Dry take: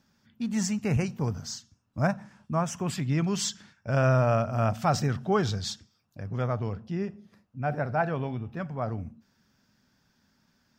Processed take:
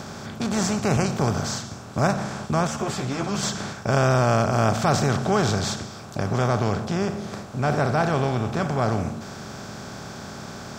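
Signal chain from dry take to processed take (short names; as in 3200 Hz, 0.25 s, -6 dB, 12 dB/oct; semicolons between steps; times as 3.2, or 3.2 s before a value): per-bin compression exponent 0.4; 2.67–3.43 ensemble effect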